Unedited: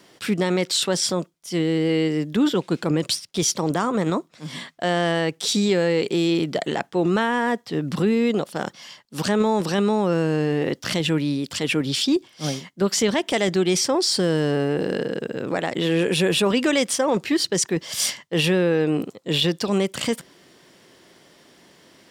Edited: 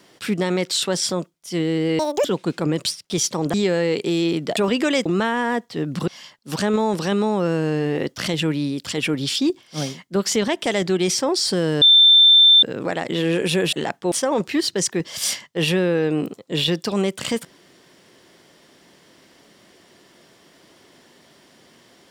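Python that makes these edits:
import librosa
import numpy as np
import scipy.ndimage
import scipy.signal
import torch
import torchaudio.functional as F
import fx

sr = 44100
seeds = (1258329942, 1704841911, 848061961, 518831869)

y = fx.edit(x, sr, fx.speed_span(start_s=1.99, length_s=0.5, speed=1.95),
    fx.cut(start_s=3.78, length_s=1.82),
    fx.swap(start_s=6.63, length_s=0.39, other_s=16.39, other_length_s=0.49),
    fx.cut(start_s=8.04, length_s=0.7),
    fx.bleep(start_s=14.48, length_s=0.81, hz=3560.0, db=-8.0), tone=tone)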